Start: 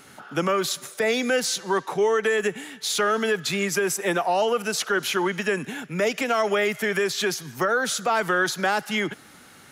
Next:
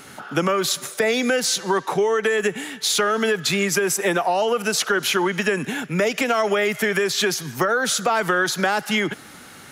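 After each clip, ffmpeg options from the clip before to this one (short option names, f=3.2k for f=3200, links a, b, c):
-af "acompressor=threshold=-23dB:ratio=6,volume=6.5dB"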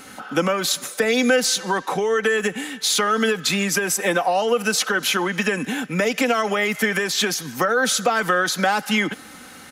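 -af "aecho=1:1:3.9:0.5"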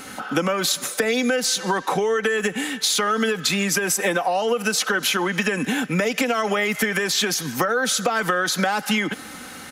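-af "acompressor=threshold=-22dB:ratio=6,volume=4dB"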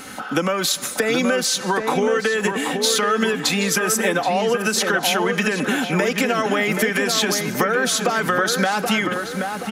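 -filter_complex "[0:a]asplit=2[a][b];[b]adelay=777,lowpass=f=1.7k:p=1,volume=-4.5dB,asplit=2[c][d];[d]adelay=777,lowpass=f=1.7k:p=1,volume=0.49,asplit=2[e][f];[f]adelay=777,lowpass=f=1.7k:p=1,volume=0.49,asplit=2[g][h];[h]adelay=777,lowpass=f=1.7k:p=1,volume=0.49,asplit=2[i][j];[j]adelay=777,lowpass=f=1.7k:p=1,volume=0.49,asplit=2[k][l];[l]adelay=777,lowpass=f=1.7k:p=1,volume=0.49[m];[a][c][e][g][i][k][m]amix=inputs=7:normalize=0,volume=1dB"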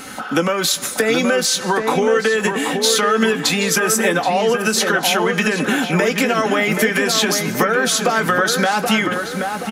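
-filter_complex "[0:a]asplit=2[a][b];[b]adelay=18,volume=-11dB[c];[a][c]amix=inputs=2:normalize=0,volume=2.5dB"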